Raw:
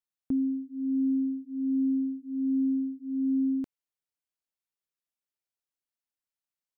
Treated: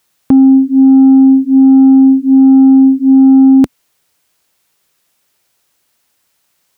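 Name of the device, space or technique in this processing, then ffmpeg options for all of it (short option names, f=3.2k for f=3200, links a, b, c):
mastering chain: -af "highpass=54,equalizer=f=260:t=o:w=0.24:g=-3,acompressor=threshold=-33dB:ratio=2,asoftclip=type=tanh:threshold=-28.5dB,alimiter=level_in=32.5dB:limit=-1dB:release=50:level=0:latency=1,volume=-1dB"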